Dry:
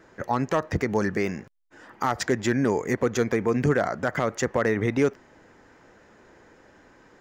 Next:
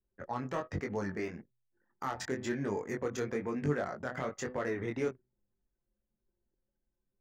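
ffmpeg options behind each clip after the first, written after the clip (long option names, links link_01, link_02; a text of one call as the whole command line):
ffmpeg -i in.wav -af "flanger=delay=20:depth=3.7:speed=1.1,bandreject=frequency=126.2:width_type=h:width=4,bandreject=frequency=252.4:width_type=h:width=4,bandreject=frequency=378.6:width_type=h:width=4,bandreject=frequency=504.8:width_type=h:width=4,bandreject=frequency=631:width_type=h:width=4,bandreject=frequency=757.2:width_type=h:width=4,bandreject=frequency=883.4:width_type=h:width=4,bandreject=frequency=1009.6:width_type=h:width=4,bandreject=frequency=1135.8:width_type=h:width=4,bandreject=frequency=1262:width_type=h:width=4,bandreject=frequency=1388.2:width_type=h:width=4,bandreject=frequency=1514.4:width_type=h:width=4,bandreject=frequency=1640.6:width_type=h:width=4,bandreject=frequency=1766.8:width_type=h:width=4,bandreject=frequency=1893:width_type=h:width=4,bandreject=frequency=2019.2:width_type=h:width=4,bandreject=frequency=2145.4:width_type=h:width=4,bandreject=frequency=2271.6:width_type=h:width=4,bandreject=frequency=2397.8:width_type=h:width=4,bandreject=frequency=2524:width_type=h:width=4,bandreject=frequency=2650.2:width_type=h:width=4,bandreject=frequency=2776.4:width_type=h:width=4,bandreject=frequency=2902.6:width_type=h:width=4,bandreject=frequency=3028.8:width_type=h:width=4,bandreject=frequency=3155:width_type=h:width=4,bandreject=frequency=3281.2:width_type=h:width=4,bandreject=frequency=3407.4:width_type=h:width=4,bandreject=frequency=3533.6:width_type=h:width=4,bandreject=frequency=3659.8:width_type=h:width=4,bandreject=frequency=3786:width_type=h:width=4,bandreject=frequency=3912.2:width_type=h:width=4,bandreject=frequency=4038.4:width_type=h:width=4,bandreject=frequency=4164.6:width_type=h:width=4,bandreject=frequency=4290.8:width_type=h:width=4,bandreject=frequency=4417:width_type=h:width=4,bandreject=frequency=4543.2:width_type=h:width=4,bandreject=frequency=4669.4:width_type=h:width=4,bandreject=frequency=4795.6:width_type=h:width=4,anlmdn=0.398,volume=-8dB" out.wav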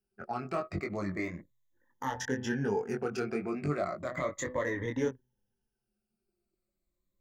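ffmpeg -i in.wav -af "afftfilt=real='re*pow(10,14/40*sin(2*PI*(1.1*log(max(b,1)*sr/1024/100)/log(2)-(-0.34)*(pts-256)/sr)))':imag='im*pow(10,14/40*sin(2*PI*(1.1*log(max(b,1)*sr/1024/100)/log(2)-(-0.34)*(pts-256)/sr)))':win_size=1024:overlap=0.75" out.wav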